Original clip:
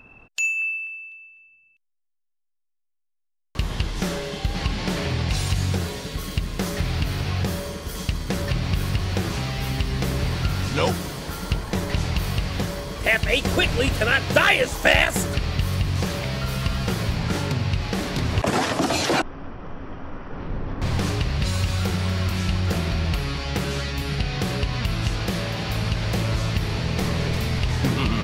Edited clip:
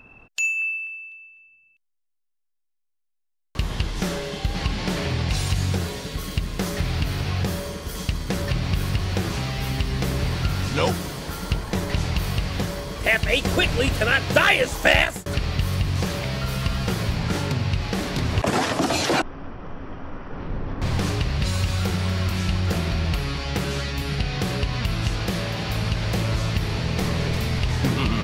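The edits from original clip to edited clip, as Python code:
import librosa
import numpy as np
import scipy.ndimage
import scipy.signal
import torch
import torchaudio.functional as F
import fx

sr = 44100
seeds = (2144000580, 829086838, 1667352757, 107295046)

y = fx.edit(x, sr, fx.fade_out_span(start_s=15.0, length_s=0.26), tone=tone)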